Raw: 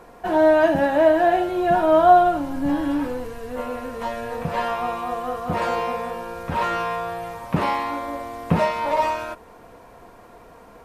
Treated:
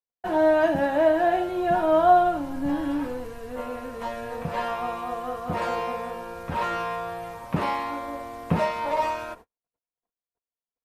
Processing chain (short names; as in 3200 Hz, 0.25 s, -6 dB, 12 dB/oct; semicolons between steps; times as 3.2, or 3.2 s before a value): gate -39 dBFS, range -57 dB; gain -4 dB